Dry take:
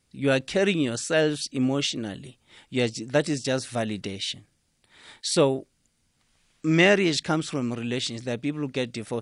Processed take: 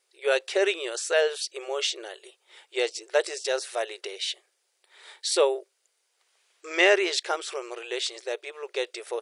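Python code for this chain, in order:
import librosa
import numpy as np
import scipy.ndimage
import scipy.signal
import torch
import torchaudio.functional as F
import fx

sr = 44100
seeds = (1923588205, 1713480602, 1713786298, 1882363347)

y = fx.brickwall_highpass(x, sr, low_hz=350.0)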